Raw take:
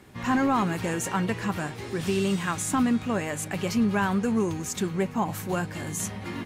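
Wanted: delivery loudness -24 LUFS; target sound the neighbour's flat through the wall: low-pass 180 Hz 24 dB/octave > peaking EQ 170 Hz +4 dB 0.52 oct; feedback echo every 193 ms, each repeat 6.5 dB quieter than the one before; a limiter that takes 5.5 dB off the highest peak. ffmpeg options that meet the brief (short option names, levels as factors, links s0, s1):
-af "alimiter=limit=0.106:level=0:latency=1,lowpass=f=180:w=0.5412,lowpass=f=180:w=1.3066,equalizer=f=170:t=o:w=0.52:g=4,aecho=1:1:193|386|579|772|965|1158:0.473|0.222|0.105|0.0491|0.0231|0.0109,volume=2.99"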